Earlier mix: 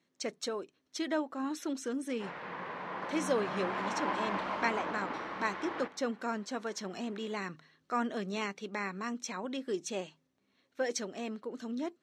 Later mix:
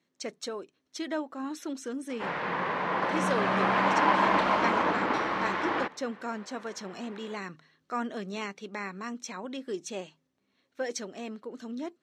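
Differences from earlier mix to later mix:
background +11.5 dB; reverb: off

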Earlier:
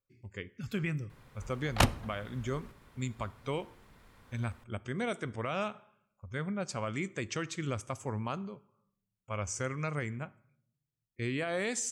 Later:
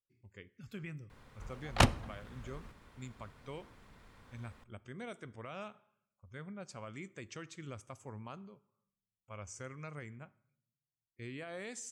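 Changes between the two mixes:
speech -11.0 dB; background: add bell 13000 Hz -8.5 dB 0.58 oct

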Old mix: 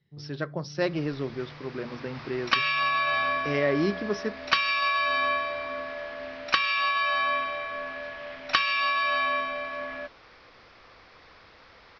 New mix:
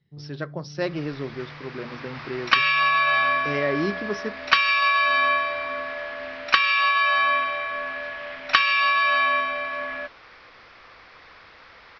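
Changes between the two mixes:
first sound +3.0 dB; second sound: add bell 1800 Hz +6.5 dB 2.4 oct

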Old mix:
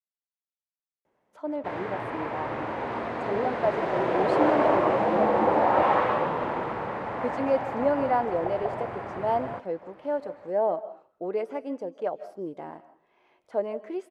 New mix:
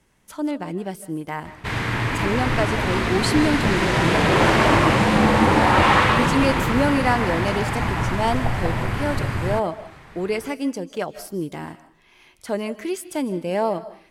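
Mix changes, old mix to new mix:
speech: entry -1.05 s; master: remove band-pass 610 Hz, Q 1.7

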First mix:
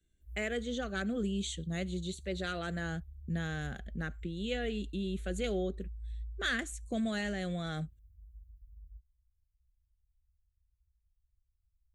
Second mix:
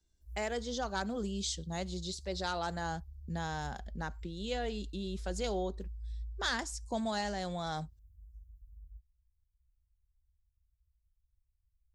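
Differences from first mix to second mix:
speech -4.5 dB; master: remove fixed phaser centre 2200 Hz, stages 4

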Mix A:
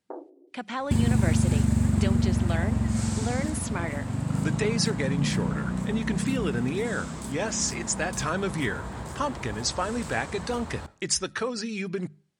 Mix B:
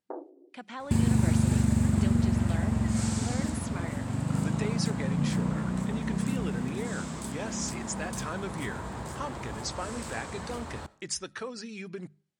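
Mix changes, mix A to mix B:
speech -8.0 dB; master: add low shelf 89 Hz -5 dB

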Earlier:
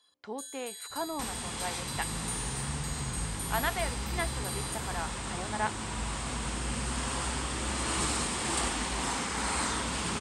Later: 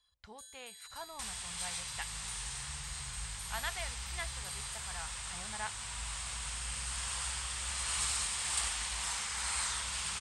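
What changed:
speech: remove weighting filter A; first sound: add tilt -3 dB/oct; master: add passive tone stack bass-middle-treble 10-0-10

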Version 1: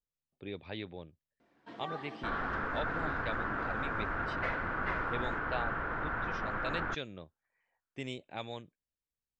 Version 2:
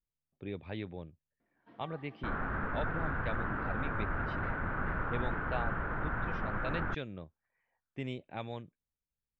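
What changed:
first sound -11.0 dB; second sound: send off; master: add tone controls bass +5 dB, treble -15 dB

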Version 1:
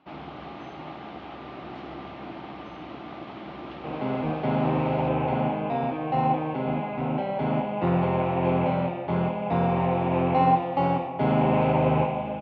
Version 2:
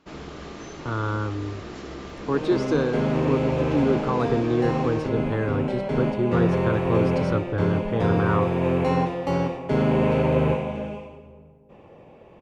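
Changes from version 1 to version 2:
speech: unmuted; second sound: entry -1.50 s; master: remove speaker cabinet 110–3400 Hz, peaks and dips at 200 Hz -3 dB, 440 Hz -9 dB, 780 Hz +9 dB, 1700 Hz -5 dB

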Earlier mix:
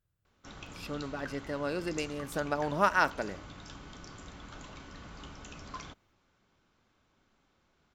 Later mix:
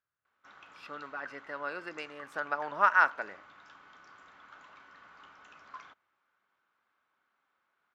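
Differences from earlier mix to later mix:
speech +4.5 dB; master: add band-pass 1400 Hz, Q 1.6

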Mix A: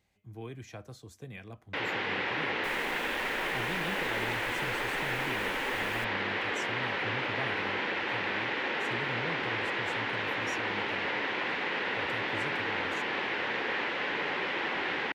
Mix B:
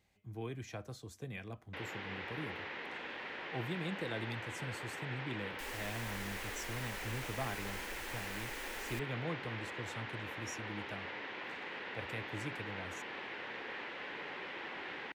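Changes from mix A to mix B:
first sound -12.0 dB; second sound: entry +2.95 s

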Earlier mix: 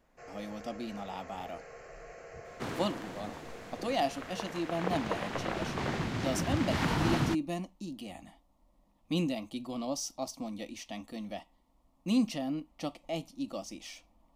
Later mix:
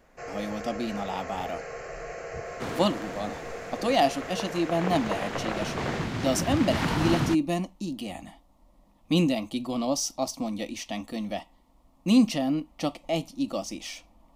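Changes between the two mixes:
speech +8.0 dB; first sound +11.0 dB; second sound +3.0 dB

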